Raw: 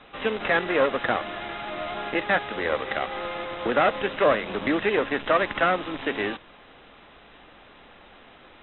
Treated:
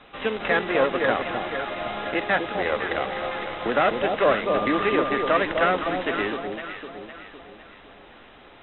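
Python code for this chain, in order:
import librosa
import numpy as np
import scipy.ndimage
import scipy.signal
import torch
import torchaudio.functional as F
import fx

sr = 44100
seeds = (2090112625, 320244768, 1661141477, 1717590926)

y = fx.echo_alternate(x, sr, ms=254, hz=970.0, feedback_pct=65, wet_db=-4)
y = fx.dmg_tone(y, sr, hz=1200.0, level_db=-28.0, at=(4.46, 5.29), fade=0.02)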